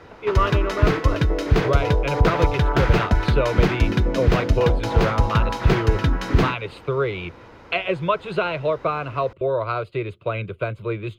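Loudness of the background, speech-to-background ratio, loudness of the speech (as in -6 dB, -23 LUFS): -21.5 LUFS, -4.5 dB, -26.0 LUFS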